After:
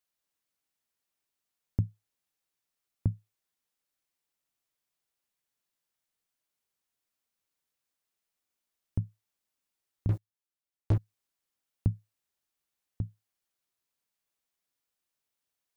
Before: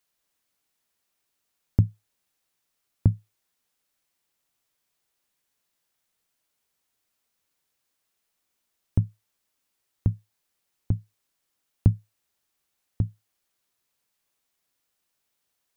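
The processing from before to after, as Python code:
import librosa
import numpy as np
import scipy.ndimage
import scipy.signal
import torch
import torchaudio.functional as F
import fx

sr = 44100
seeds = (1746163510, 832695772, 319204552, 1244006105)

y = fx.leveller(x, sr, passes=5, at=(10.09, 10.98))
y = y * 10.0 ** (-8.5 / 20.0)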